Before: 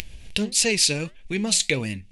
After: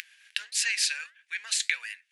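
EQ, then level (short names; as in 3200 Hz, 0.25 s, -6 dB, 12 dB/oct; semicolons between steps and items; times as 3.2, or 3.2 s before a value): ladder high-pass 1500 Hz, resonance 75%; +4.5 dB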